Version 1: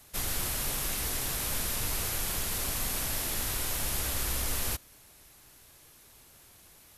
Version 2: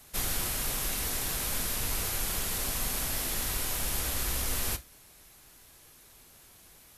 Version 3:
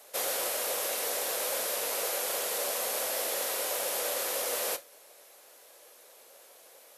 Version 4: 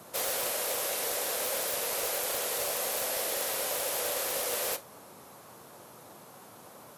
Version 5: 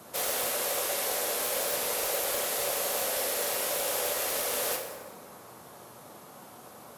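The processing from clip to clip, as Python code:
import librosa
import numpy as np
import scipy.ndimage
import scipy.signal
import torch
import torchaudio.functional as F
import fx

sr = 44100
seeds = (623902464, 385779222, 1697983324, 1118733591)

y1 = fx.rider(x, sr, range_db=10, speed_s=0.5)
y1 = fx.rev_gated(y1, sr, seeds[0], gate_ms=90, shape='falling', drr_db=10.0)
y2 = fx.highpass_res(y1, sr, hz=530.0, q=4.9)
y3 = (np.mod(10.0 ** (22.0 / 20.0) * y2 + 1.0, 2.0) - 1.0) / 10.0 ** (22.0 / 20.0)
y3 = fx.dmg_noise_band(y3, sr, seeds[1], low_hz=100.0, high_hz=1200.0, level_db=-53.0)
y4 = fx.rev_plate(y3, sr, seeds[2], rt60_s=1.8, hf_ratio=0.55, predelay_ms=0, drr_db=2.5)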